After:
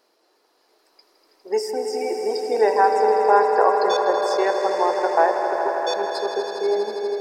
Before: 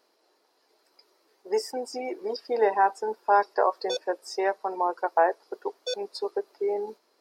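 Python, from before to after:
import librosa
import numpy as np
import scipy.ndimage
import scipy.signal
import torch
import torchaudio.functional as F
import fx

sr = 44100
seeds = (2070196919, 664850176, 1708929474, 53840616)

y = fx.echo_swell(x, sr, ms=81, loudest=5, wet_db=-11.0)
y = fx.rev_spring(y, sr, rt60_s=3.3, pass_ms=(37,), chirp_ms=30, drr_db=9.0)
y = y * 10.0 ** (3.5 / 20.0)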